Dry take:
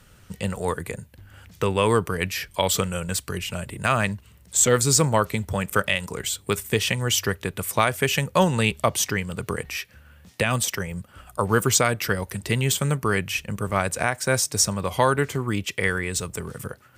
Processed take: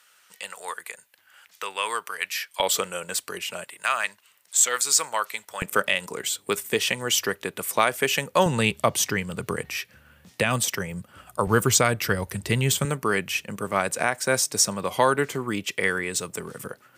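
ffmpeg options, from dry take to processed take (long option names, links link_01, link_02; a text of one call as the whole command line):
ffmpeg -i in.wav -af "asetnsamples=nb_out_samples=441:pad=0,asendcmd='2.6 highpass f 400;3.64 highpass f 1000;5.62 highpass f 260;8.46 highpass f 120;11.47 highpass f 52;12.85 highpass f 200',highpass=1100" out.wav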